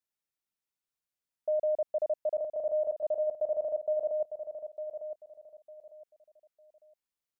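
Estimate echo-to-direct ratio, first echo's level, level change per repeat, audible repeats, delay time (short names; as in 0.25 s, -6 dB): -8.5 dB, -9.0 dB, -11.5 dB, 3, 0.903 s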